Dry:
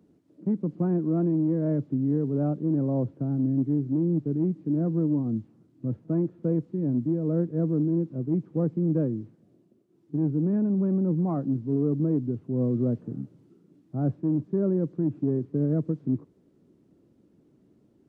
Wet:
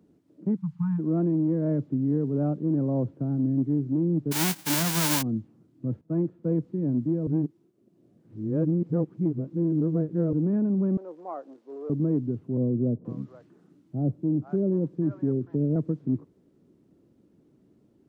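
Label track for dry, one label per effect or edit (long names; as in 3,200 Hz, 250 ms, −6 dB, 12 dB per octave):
0.560000	0.990000	time-frequency box erased 200–800 Hz
4.310000	5.210000	spectral envelope flattened exponent 0.1
6.010000	6.650000	multiband upward and downward expander depth 70%
7.270000	10.330000	reverse
10.970000	11.900000	high-pass filter 500 Hz 24 dB per octave
12.570000	15.760000	multiband delay without the direct sound lows, highs 480 ms, split 810 Hz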